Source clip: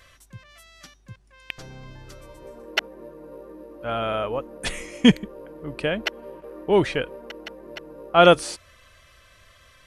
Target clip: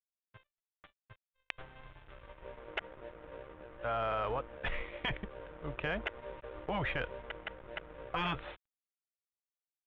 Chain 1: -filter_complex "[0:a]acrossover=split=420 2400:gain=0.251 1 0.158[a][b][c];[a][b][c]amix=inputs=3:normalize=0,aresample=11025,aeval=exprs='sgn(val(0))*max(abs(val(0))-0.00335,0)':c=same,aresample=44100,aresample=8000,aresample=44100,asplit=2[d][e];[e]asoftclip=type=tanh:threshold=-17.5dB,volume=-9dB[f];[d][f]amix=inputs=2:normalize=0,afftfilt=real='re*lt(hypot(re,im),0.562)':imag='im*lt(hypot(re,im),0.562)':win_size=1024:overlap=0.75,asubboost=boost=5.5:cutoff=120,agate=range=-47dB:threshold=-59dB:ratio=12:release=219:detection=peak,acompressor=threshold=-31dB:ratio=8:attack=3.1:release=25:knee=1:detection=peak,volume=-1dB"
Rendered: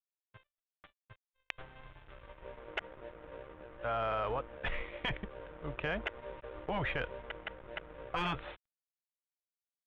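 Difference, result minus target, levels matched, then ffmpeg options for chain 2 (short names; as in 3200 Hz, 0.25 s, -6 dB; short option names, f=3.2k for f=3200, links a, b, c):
soft clip: distortion +10 dB
-filter_complex "[0:a]acrossover=split=420 2400:gain=0.251 1 0.158[a][b][c];[a][b][c]amix=inputs=3:normalize=0,aresample=11025,aeval=exprs='sgn(val(0))*max(abs(val(0))-0.00335,0)':c=same,aresample=44100,aresample=8000,aresample=44100,asplit=2[d][e];[e]asoftclip=type=tanh:threshold=-8dB,volume=-9dB[f];[d][f]amix=inputs=2:normalize=0,afftfilt=real='re*lt(hypot(re,im),0.562)':imag='im*lt(hypot(re,im),0.562)':win_size=1024:overlap=0.75,asubboost=boost=5.5:cutoff=120,agate=range=-47dB:threshold=-59dB:ratio=12:release=219:detection=peak,acompressor=threshold=-31dB:ratio=8:attack=3.1:release=25:knee=1:detection=peak,volume=-1dB"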